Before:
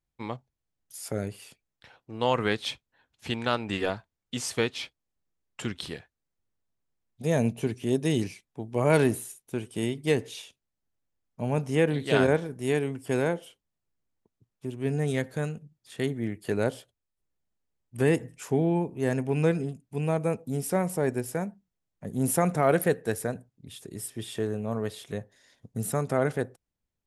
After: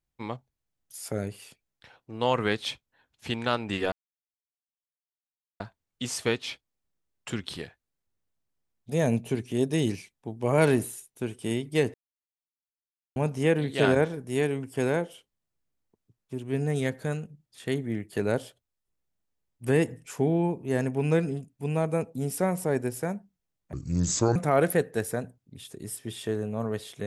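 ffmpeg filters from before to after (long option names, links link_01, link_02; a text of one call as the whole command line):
ffmpeg -i in.wav -filter_complex "[0:a]asplit=6[link_01][link_02][link_03][link_04][link_05][link_06];[link_01]atrim=end=3.92,asetpts=PTS-STARTPTS,afade=type=out:start_time=3.916:duration=0.004:curve=hsin,apad=pad_dur=1.68[link_07];[link_02]atrim=start=3.92:end=10.26,asetpts=PTS-STARTPTS,afade=type=in:duration=0.004:curve=hsin,afade=type=out:start_time=6.336:duration=0.004:curve=hsin[link_08];[link_03]atrim=start=10.26:end=11.48,asetpts=PTS-STARTPTS,volume=0[link_09];[link_04]atrim=start=11.48:end=22.054,asetpts=PTS-STARTPTS,afade=type=in:duration=0.004:curve=hsin[link_10];[link_05]atrim=start=22.05:end=22.47,asetpts=PTS-STARTPTS,asetrate=29547,aresample=44100[link_11];[link_06]atrim=start=22.466[link_12];[link_07][link_08][link_09][link_10]concat=n=4:v=0:a=1[link_13];[link_13][link_11]acrossfade=duration=0.004:curve1=hsin:curve2=hsin[link_14];[link_14][link_12]acrossfade=duration=0.004:curve1=hsin:curve2=hsin" out.wav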